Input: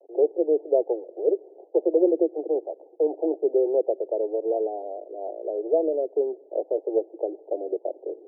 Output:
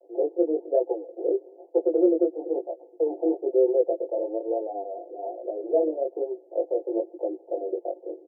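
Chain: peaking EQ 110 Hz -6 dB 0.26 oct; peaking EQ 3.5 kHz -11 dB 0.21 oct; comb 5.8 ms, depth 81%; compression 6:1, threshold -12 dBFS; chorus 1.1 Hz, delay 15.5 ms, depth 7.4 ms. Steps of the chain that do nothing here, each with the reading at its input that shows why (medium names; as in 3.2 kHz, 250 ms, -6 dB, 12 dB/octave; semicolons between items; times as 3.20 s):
peaking EQ 110 Hz: input has nothing below 250 Hz; peaking EQ 3.5 kHz: input has nothing above 850 Hz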